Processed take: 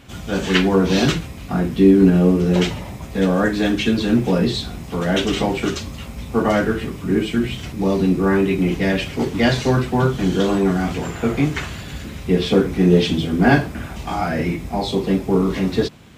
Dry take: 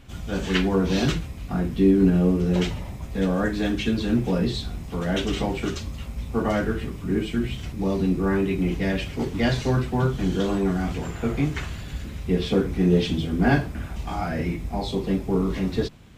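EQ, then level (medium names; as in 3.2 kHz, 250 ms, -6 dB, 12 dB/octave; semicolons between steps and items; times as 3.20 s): high-pass 140 Hz 6 dB/octave; +7.0 dB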